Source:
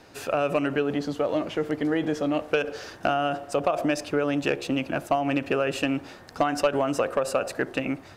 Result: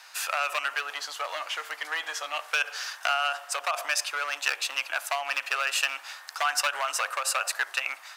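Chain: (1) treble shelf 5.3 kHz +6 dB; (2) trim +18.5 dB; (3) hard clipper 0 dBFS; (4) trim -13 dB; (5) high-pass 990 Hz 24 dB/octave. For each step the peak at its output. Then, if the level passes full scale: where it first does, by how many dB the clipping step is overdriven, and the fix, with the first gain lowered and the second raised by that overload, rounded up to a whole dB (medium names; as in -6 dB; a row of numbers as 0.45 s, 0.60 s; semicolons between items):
-12.0 dBFS, +6.5 dBFS, 0.0 dBFS, -13.0 dBFS, -9.0 dBFS; step 2, 6.5 dB; step 2 +11.5 dB, step 4 -6 dB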